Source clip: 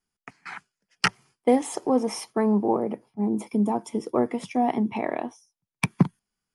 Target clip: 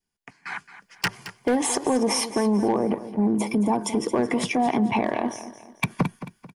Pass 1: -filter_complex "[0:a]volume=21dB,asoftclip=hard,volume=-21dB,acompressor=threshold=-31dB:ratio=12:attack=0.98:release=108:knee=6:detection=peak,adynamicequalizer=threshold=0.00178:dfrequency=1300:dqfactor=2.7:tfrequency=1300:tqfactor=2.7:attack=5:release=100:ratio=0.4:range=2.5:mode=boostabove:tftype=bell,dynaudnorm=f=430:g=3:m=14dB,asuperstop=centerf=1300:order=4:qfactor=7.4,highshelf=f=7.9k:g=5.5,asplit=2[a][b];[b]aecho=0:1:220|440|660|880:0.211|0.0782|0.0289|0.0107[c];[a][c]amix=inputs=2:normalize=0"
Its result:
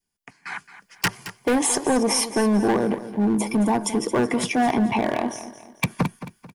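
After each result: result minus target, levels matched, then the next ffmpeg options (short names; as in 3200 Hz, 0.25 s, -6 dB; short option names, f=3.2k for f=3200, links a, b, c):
overloaded stage: distortion +7 dB; 8000 Hz band +2.5 dB
-filter_complex "[0:a]volume=14.5dB,asoftclip=hard,volume=-14.5dB,acompressor=threshold=-31dB:ratio=12:attack=0.98:release=108:knee=6:detection=peak,adynamicequalizer=threshold=0.00178:dfrequency=1300:dqfactor=2.7:tfrequency=1300:tqfactor=2.7:attack=5:release=100:ratio=0.4:range=2.5:mode=boostabove:tftype=bell,dynaudnorm=f=430:g=3:m=14dB,asuperstop=centerf=1300:order=4:qfactor=7.4,highshelf=f=7.9k:g=5.5,asplit=2[a][b];[b]aecho=0:1:220|440|660|880:0.211|0.0782|0.0289|0.0107[c];[a][c]amix=inputs=2:normalize=0"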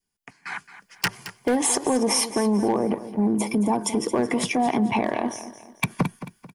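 8000 Hz band +3.5 dB
-filter_complex "[0:a]volume=14.5dB,asoftclip=hard,volume=-14.5dB,acompressor=threshold=-31dB:ratio=12:attack=0.98:release=108:knee=6:detection=peak,adynamicequalizer=threshold=0.00178:dfrequency=1300:dqfactor=2.7:tfrequency=1300:tqfactor=2.7:attack=5:release=100:ratio=0.4:range=2.5:mode=boostabove:tftype=bell,dynaudnorm=f=430:g=3:m=14dB,asuperstop=centerf=1300:order=4:qfactor=7.4,highshelf=f=7.9k:g=-2,asplit=2[a][b];[b]aecho=0:1:220|440|660|880:0.211|0.0782|0.0289|0.0107[c];[a][c]amix=inputs=2:normalize=0"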